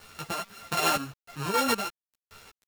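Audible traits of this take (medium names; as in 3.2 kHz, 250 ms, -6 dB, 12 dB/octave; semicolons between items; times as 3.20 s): a buzz of ramps at a fixed pitch in blocks of 32 samples; chopped level 1.3 Hz, depth 65%, duty 25%; a quantiser's noise floor 8-bit, dither none; a shimmering, thickened sound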